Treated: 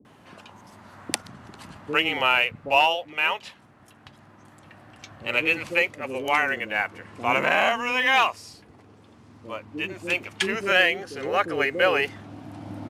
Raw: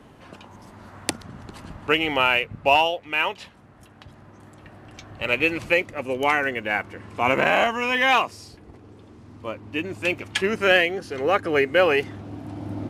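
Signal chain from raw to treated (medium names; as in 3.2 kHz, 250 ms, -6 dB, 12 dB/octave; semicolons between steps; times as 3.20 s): high-pass 97 Hz; bass shelf 440 Hz -4 dB; bands offset in time lows, highs 50 ms, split 420 Hz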